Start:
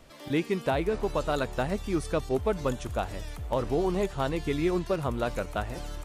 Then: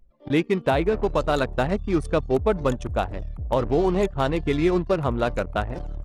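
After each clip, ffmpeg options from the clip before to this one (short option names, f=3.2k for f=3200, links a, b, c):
-af "anlmdn=1.58,volume=6dB"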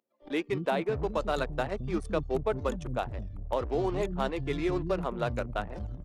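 -filter_complex "[0:a]acrossover=split=250[a][b];[a]adelay=220[c];[c][b]amix=inputs=2:normalize=0,volume=-7dB"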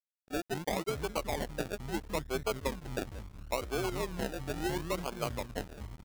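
-af "acrusher=samples=33:mix=1:aa=0.000001:lfo=1:lforange=19.8:lforate=0.73,aeval=exprs='sgn(val(0))*max(abs(val(0))-0.00668,0)':c=same,volume=-3.5dB"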